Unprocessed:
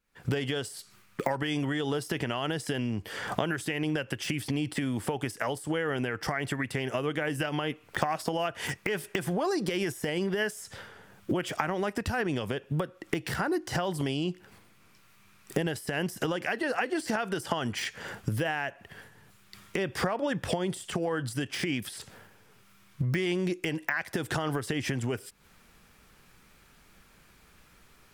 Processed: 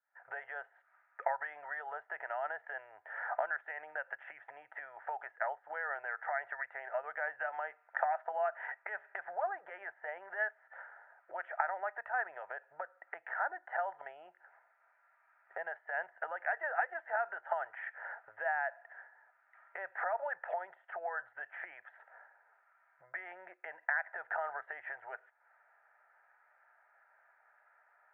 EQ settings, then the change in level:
elliptic band-pass filter 650–1,800 Hz, stop band 50 dB
Butterworth band-reject 1,100 Hz, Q 4.9
high-frequency loss of the air 180 metres
0.0 dB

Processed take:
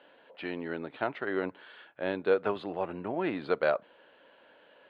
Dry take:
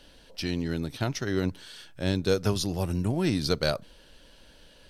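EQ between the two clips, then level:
moving average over 8 samples
high-pass filter 540 Hz 12 dB per octave
high-frequency loss of the air 440 metres
+6.0 dB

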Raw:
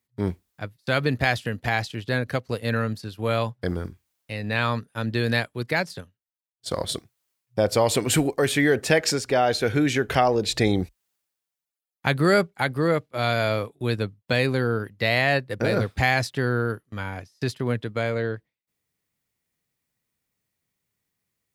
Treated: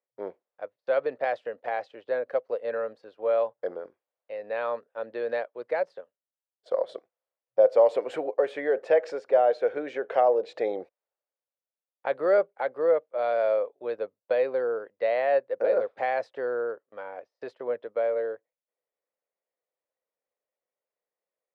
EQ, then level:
four-pole ladder band-pass 590 Hz, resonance 65%
spectral tilt +2 dB per octave
+7.5 dB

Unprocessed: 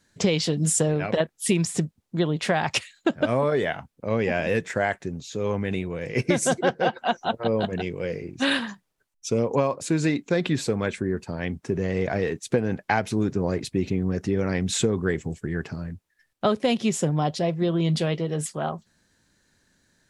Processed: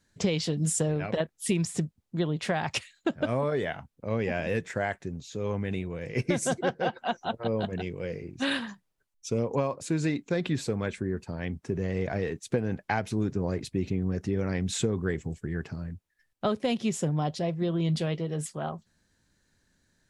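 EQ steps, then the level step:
low-shelf EQ 110 Hz +7.5 dB
−6.0 dB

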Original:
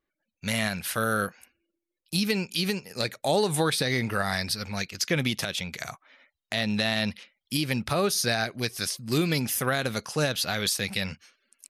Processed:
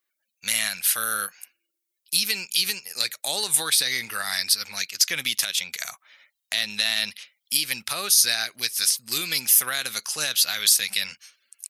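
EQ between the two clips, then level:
dynamic equaliser 580 Hz, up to −5 dB, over −38 dBFS, Q 0.72
spectral tilt +4 dB per octave
low-shelf EQ 420 Hz −6 dB
−1.0 dB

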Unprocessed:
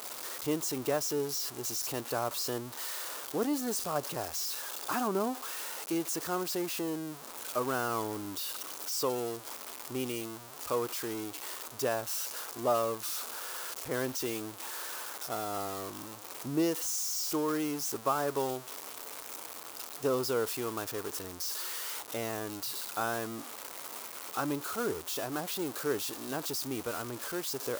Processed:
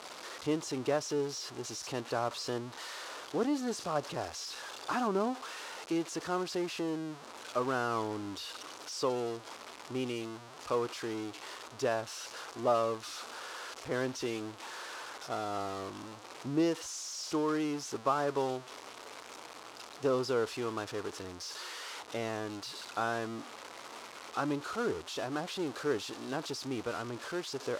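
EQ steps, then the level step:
low-pass filter 5,000 Hz 12 dB per octave
0.0 dB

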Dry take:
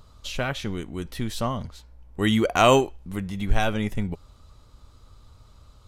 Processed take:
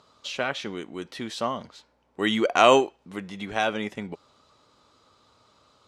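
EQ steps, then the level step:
band-pass filter 290–6,400 Hz
+1.0 dB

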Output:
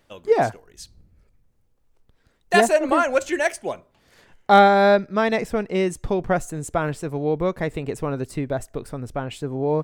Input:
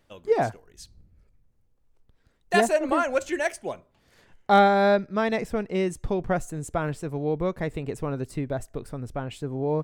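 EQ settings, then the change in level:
low-shelf EQ 220 Hz −4 dB
+5.0 dB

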